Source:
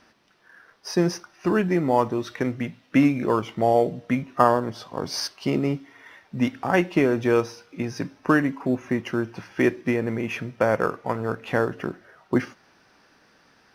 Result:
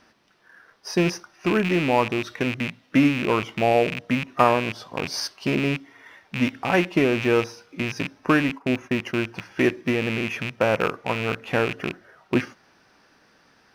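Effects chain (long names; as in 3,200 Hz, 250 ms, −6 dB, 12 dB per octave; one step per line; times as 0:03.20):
loose part that buzzes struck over −33 dBFS, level −17 dBFS
0:08.49–0:09.15: noise gate −34 dBFS, range −15 dB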